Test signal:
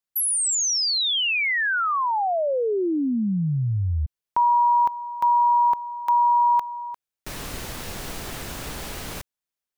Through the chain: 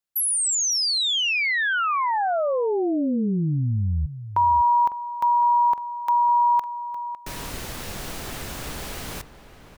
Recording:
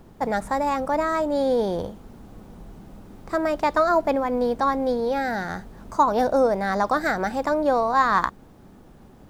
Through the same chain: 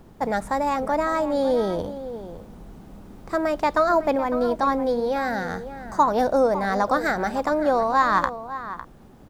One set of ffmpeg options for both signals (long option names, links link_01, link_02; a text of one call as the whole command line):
ffmpeg -i in.wav -filter_complex "[0:a]asplit=2[link_01][link_02];[link_02]adelay=553.9,volume=-12dB,highshelf=frequency=4000:gain=-12.5[link_03];[link_01][link_03]amix=inputs=2:normalize=0" out.wav